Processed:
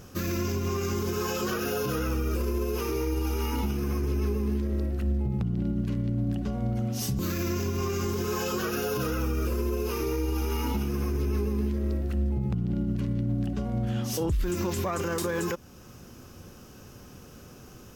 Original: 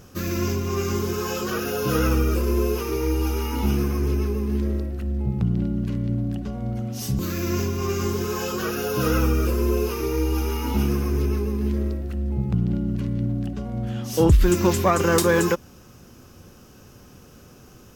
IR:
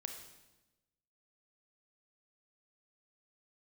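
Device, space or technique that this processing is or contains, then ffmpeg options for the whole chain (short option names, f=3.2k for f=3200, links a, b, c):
stacked limiters: -af "alimiter=limit=-14dB:level=0:latency=1:release=376,alimiter=limit=-20.5dB:level=0:latency=1:release=49"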